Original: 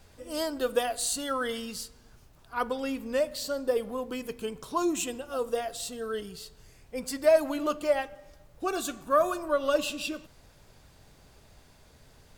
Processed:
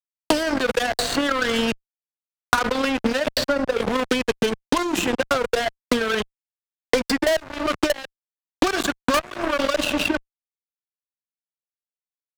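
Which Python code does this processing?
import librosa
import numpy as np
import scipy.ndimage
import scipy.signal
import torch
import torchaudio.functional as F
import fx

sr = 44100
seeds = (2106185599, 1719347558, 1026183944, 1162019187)

y = scipy.signal.sosfilt(scipy.signal.butter(2, 4500.0, 'lowpass', fs=sr, output='sos'), x)
y = fx.peak_eq(y, sr, hz=1600.0, db=8.5, octaves=0.31)
y = fx.level_steps(y, sr, step_db=20)
y = fx.transient(y, sr, attack_db=12, sustain_db=-5)
y = fx.fuzz(y, sr, gain_db=34.0, gate_db=-42.0)
y = fx.band_squash(y, sr, depth_pct=100)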